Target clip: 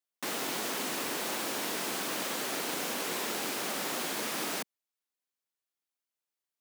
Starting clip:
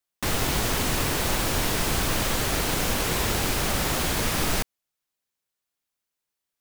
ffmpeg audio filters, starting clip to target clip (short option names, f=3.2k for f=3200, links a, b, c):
-af "highpass=f=220:w=0.5412,highpass=f=220:w=1.3066,volume=-7.5dB"